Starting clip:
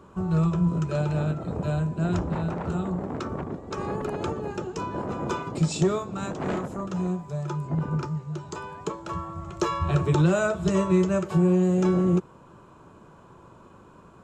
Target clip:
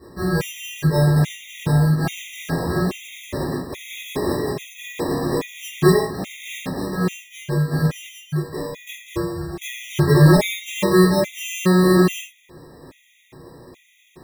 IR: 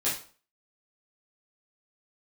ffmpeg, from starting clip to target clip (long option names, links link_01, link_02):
-filter_complex "[0:a]acrusher=samples=30:mix=1:aa=0.000001[link_01];[1:a]atrim=start_sample=2205,atrim=end_sample=6174[link_02];[link_01][link_02]afir=irnorm=-1:irlink=0,afftfilt=real='re*gt(sin(2*PI*1.2*pts/sr)*(1-2*mod(floor(b*sr/1024/1900),2)),0)':imag='im*gt(sin(2*PI*1.2*pts/sr)*(1-2*mod(floor(b*sr/1024/1900),2)),0)':win_size=1024:overlap=0.75,volume=-1dB"